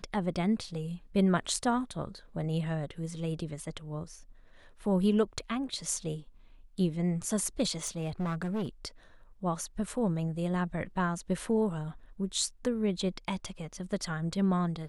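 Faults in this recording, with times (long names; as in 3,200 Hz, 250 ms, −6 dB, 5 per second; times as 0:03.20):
0:07.84–0:08.69: clipping −29 dBFS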